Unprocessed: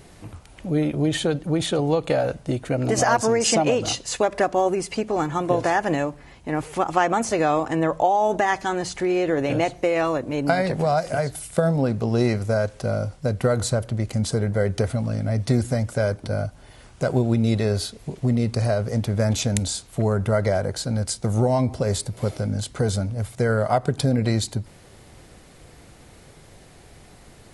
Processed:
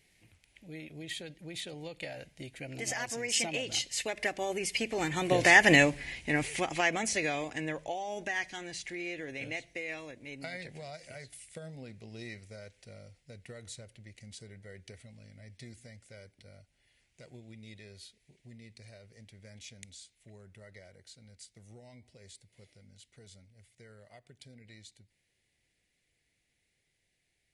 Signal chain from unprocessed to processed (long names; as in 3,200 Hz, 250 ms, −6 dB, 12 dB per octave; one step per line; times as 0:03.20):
source passing by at 0:05.81, 12 m/s, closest 4.1 metres
high shelf with overshoot 1,600 Hz +9 dB, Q 3